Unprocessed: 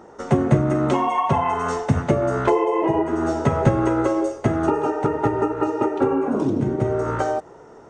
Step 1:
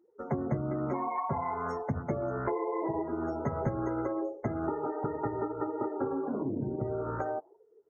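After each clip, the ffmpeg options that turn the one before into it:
-af "afftdn=nr=32:nf=-31,afftfilt=real='re*(1-between(b*sr/4096,2400,5100))':imag='im*(1-between(b*sr/4096,2400,5100))':win_size=4096:overlap=0.75,acompressor=threshold=-25dB:ratio=2,volume=-7.5dB"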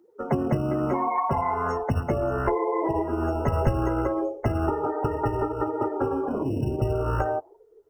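-filter_complex "[0:a]asubboost=boost=10.5:cutoff=58,acrossover=split=140|1900[a][b][c];[a]acrusher=samples=16:mix=1:aa=0.000001[d];[d][b][c]amix=inputs=3:normalize=0,volume=8dB"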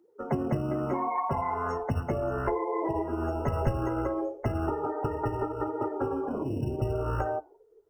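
-af "flanger=delay=6.6:depth=2.7:regen=-84:speed=0.85:shape=triangular"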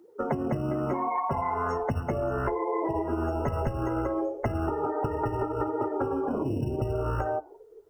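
-af "acompressor=threshold=-34dB:ratio=6,volume=8.5dB"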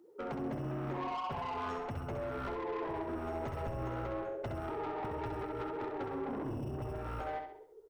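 -filter_complex "[0:a]asoftclip=type=tanh:threshold=-29.5dB,asplit=2[a][b];[b]aecho=0:1:66|132|198|264|330:0.501|0.216|0.0927|0.0398|0.0171[c];[a][c]amix=inputs=2:normalize=0,volume=-6dB"

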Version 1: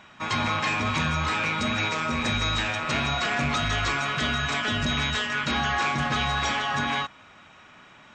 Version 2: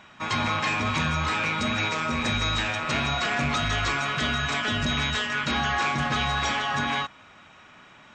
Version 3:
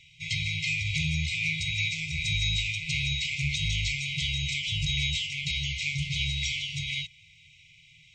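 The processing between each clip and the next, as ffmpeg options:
-af anull
-af "afftfilt=real='re*(1-between(b*sr/4096,170,2000))':imag='im*(1-between(b*sr/4096,170,2000))':win_size=4096:overlap=0.75"

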